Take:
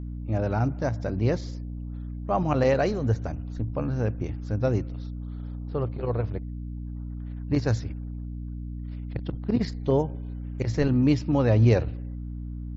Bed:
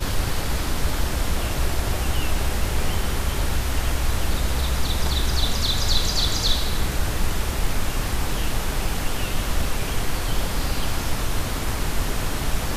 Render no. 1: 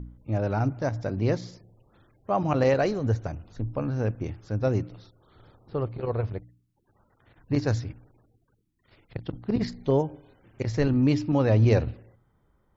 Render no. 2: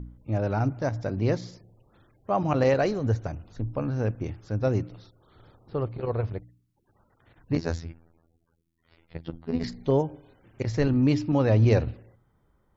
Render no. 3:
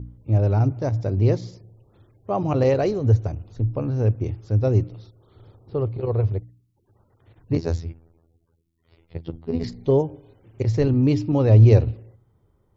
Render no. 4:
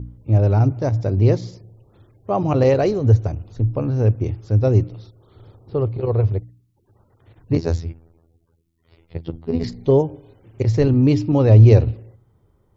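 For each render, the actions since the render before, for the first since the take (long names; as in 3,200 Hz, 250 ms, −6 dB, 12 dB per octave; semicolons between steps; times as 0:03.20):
hum removal 60 Hz, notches 5
0:07.57–0:09.64: phases set to zero 82.8 Hz
graphic EQ with 15 bands 100 Hz +11 dB, 400 Hz +6 dB, 1,600 Hz −6 dB
level +3.5 dB; brickwall limiter −2 dBFS, peak gain reduction 1.5 dB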